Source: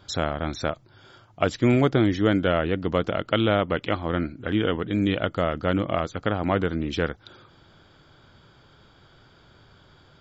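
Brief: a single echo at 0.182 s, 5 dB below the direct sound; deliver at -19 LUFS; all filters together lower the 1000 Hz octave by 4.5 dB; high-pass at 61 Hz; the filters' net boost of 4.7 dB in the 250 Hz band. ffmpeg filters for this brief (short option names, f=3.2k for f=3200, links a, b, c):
-af "highpass=61,equalizer=f=250:t=o:g=6.5,equalizer=f=1k:t=o:g=-7.5,aecho=1:1:182:0.562,volume=2.5dB"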